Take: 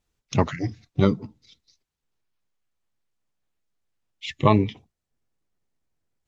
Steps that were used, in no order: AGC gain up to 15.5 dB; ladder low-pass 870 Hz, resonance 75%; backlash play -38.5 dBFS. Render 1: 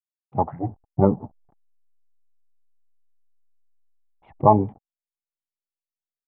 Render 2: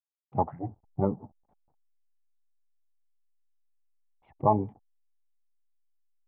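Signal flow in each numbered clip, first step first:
backlash > ladder low-pass > AGC; AGC > backlash > ladder low-pass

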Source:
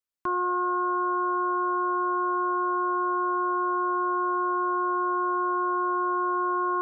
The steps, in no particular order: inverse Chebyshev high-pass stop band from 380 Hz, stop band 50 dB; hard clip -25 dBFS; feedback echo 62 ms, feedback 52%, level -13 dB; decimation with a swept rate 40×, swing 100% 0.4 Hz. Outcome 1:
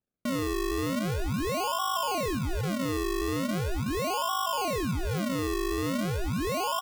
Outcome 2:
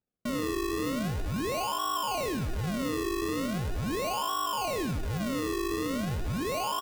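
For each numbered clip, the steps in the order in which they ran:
inverse Chebyshev high-pass > hard clip > feedback echo > decimation with a swept rate; hard clip > inverse Chebyshev high-pass > decimation with a swept rate > feedback echo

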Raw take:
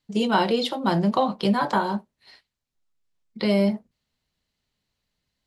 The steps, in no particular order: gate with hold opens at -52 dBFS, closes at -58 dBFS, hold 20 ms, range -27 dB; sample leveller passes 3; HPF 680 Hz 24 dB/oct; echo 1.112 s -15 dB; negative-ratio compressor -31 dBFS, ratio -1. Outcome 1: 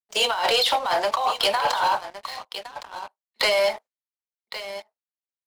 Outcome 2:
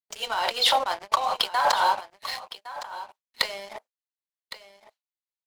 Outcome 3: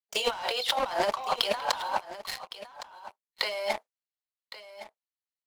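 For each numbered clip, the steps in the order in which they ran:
gate with hold > HPF > negative-ratio compressor > echo > sample leveller; negative-ratio compressor > HPF > sample leveller > echo > gate with hold; HPF > sample leveller > gate with hold > negative-ratio compressor > echo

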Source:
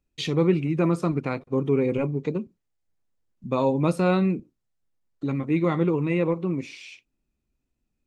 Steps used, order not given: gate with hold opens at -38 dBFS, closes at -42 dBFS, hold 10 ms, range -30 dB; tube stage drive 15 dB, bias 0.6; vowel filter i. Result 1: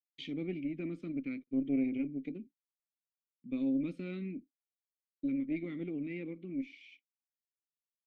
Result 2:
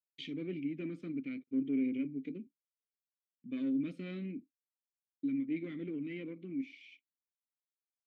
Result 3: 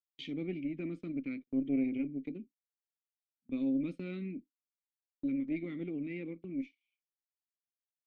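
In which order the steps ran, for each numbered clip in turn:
gate with hold > vowel filter > tube stage; gate with hold > tube stage > vowel filter; vowel filter > gate with hold > tube stage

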